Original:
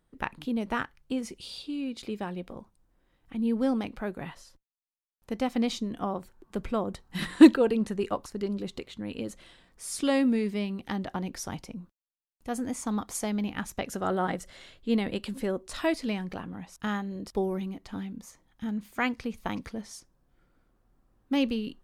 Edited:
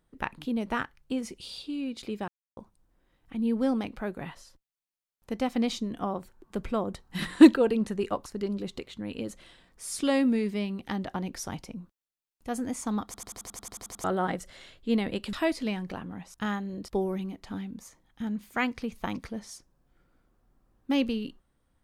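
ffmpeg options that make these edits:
-filter_complex "[0:a]asplit=15[a][b][c][d][e][f][g][h][i][j][k][l][m][n][o];[a]atrim=end=2.28,asetpts=PTS-STARTPTS,afade=t=out:st=2.276:d=0.004:c=hsin[p];[b]atrim=start=2.28:end=2.57,asetpts=PTS-STARTPTS,volume=0[q];[c]atrim=start=2.57:end=13.142,asetpts=PTS-STARTPTS,afade=t=in:d=0.004:c=hsin[r];[d]atrim=start=13.048:end=13.142[s];[e]atrim=start=13.048:end=13.142[t];[f]atrim=start=13.048:end=13.142[u];[g]atrim=start=13.048:end=13.142[v];[h]atrim=start=13.048:end=13.142[w];[i]atrim=start=13.048:end=13.142[x];[j]atrim=start=13.048:end=13.142[y];[k]atrim=start=13.048:end=13.142[z];[l]atrim=start=13.048:end=13.142[aa];[m]atrim=start=13.048:end=13.142[ab];[n]atrim=start=14.038:end=15.332[ac];[o]atrim=start=15.748[ad];[p][q][r]concat=n=3:v=0:a=1[ae];[ae][s]acrossfade=d=0.004:c1=hsin:c2=hsin[af];[af][t]acrossfade=d=0.004:c1=hsin:c2=hsin[ag];[ag][u]acrossfade=d=0.004:c1=hsin:c2=hsin[ah];[ah][v]acrossfade=d=0.004:c1=hsin:c2=hsin[ai];[ai][w]acrossfade=d=0.004:c1=hsin:c2=hsin[aj];[aj][x]acrossfade=d=0.004:c1=hsin:c2=hsin[ak];[ak][y]acrossfade=d=0.004:c1=hsin:c2=hsin[al];[al][z]acrossfade=d=0.004:c1=hsin:c2=hsin[am];[am][aa]acrossfade=d=0.004:c1=hsin:c2=hsin[an];[an][ab]acrossfade=d=0.004:c1=hsin:c2=hsin[ao];[ao][ac]acrossfade=d=0.004:c1=hsin:c2=hsin[ap];[ap][ad]acrossfade=d=0.004:c1=hsin:c2=hsin"

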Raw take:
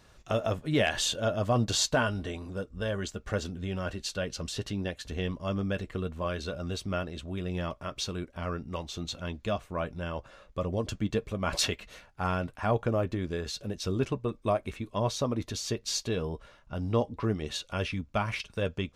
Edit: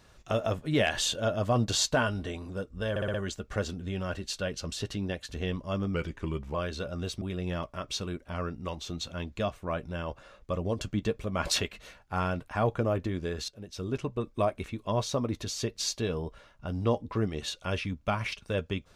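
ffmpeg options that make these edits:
-filter_complex "[0:a]asplit=9[a][b][c][d][e][f][g][h][i];[a]atrim=end=2.962[j];[b]atrim=start=2.898:end=2.962[k];[c]atrim=start=2.898:end=2.962[l];[d]atrim=start=2.898:end=2.962[m];[e]atrim=start=2.898:end=5.704[n];[f]atrim=start=5.7:end=6.22,asetpts=PTS-STARTPTS,asetrate=37926,aresample=44100,atrim=end_sample=26665,asetpts=PTS-STARTPTS[o];[g]atrim=start=6.216:end=6.892[p];[h]atrim=start=7.288:end=13.56,asetpts=PTS-STARTPTS,afade=t=out:st=6.268:d=0.004:c=hsin:silence=0.211349[q];[i]atrim=start=13.56,asetpts=PTS-STARTPTS,afade=t=in:d=0.76:silence=0.211349[r];[j][k]acrossfade=d=0.004:c1=hsin:c2=hsin[s];[s][l]acrossfade=d=0.004:c1=hsin:c2=hsin[t];[t][m]acrossfade=d=0.004:c1=hsin:c2=hsin[u];[u][n]acrossfade=d=0.004:c1=hsin:c2=hsin[v];[v][o]acrossfade=d=0.004:c1=hsin:c2=hsin[w];[w][p]acrossfade=d=0.004:c1=hsin:c2=hsin[x];[q][r]concat=n=2:v=0:a=1[y];[x][y]acrossfade=d=0.004:c1=hsin:c2=hsin"

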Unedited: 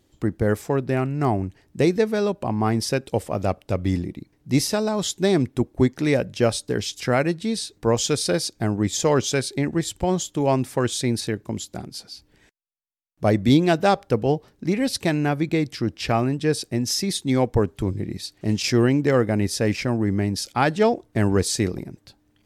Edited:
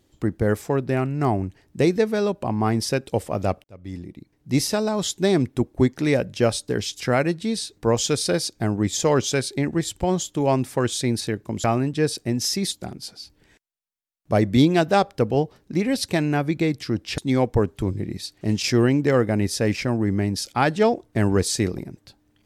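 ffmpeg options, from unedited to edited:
-filter_complex "[0:a]asplit=5[a][b][c][d][e];[a]atrim=end=3.64,asetpts=PTS-STARTPTS,afade=t=out:st=3.636:d=0.004:c=hsin[f];[b]atrim=start=3.64:end=11.642,asetpts=PTS-STARTPTS,afade=t=in:d=1.03[g];[c]atrim=start=16.098:end=17.182[h];[d]atrim=start=11.638:end=16.102[i];[e]atrim=start=17.178[j];[f][g]concat=n=2:v=0:a=1[k];[k][h]acrossfade=d=0.004:c1=hsin:c2=hsin[l];[l][i]acrossfade=d=0.004:c1=hsin:c2=hsin[m];[m][j]acrossfade=d=0.004:c1=hsin:c2=hsin"

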